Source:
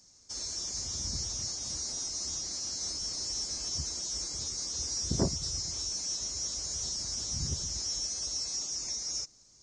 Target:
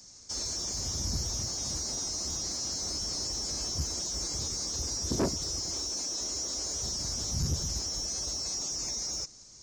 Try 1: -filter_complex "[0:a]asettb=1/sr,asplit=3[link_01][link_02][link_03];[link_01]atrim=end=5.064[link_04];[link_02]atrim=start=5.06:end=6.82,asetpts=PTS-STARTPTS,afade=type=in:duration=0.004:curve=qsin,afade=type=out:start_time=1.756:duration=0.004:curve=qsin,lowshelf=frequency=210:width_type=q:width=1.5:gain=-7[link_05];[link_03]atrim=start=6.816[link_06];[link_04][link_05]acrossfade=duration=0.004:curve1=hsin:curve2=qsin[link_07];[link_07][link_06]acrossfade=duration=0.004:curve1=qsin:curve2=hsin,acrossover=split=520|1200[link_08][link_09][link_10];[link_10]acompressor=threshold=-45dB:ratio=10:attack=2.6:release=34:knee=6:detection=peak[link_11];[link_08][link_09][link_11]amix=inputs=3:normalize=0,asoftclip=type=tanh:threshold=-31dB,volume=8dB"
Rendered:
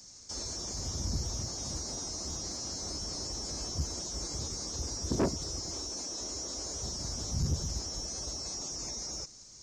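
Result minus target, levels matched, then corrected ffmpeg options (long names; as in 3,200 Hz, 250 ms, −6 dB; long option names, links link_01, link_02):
downward compressor: peak gain reduction +5.5 dB
-filter_complex "[0:a]asettb=1/sr,asplit=3[link_01][link_02][link_03];[link_01]atrim=end=5.064[link_04];[link_02]atrim=start=5.06:end=6.82,asetpts=PTS-STARTPTS,afade=type=in:duration=0.004:curve=qsin,afade=type=out:start_time=1.756:duration=0.004:curve=qsin,lowshelf=frequency=210:width_type=q:width=1.5:gain=-7[link_05];[link_03]atrim=start=6.816[link_06];[link_04][link_05]acrossfade=duration=0.004:curve1=hsin:curve2=qsin[link_07];[link_07][link_06]acrossfade=duration=0.004:curve1=qsin:curve2=hsin,acrossover=split=520|1200[link_08][link_09][link_10];[link_10]acompressor=threshold=-39dB:ratio=10:attack=2.6:release=34:knee=6:detection=peak[link_11];[link_08][link_09][link_11]amix=inputs=3:normalize=0,asoftclip=type=tanh:threshold=-31dB,volume=8dB"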